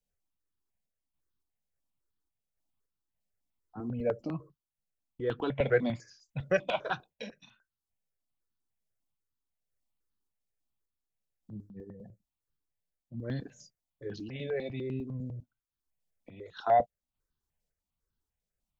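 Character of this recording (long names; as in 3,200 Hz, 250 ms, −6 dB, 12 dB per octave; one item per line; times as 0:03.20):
sample-and-hold tremolo
notches that jump at a steady rate 10 Hz 330–2,200 Hz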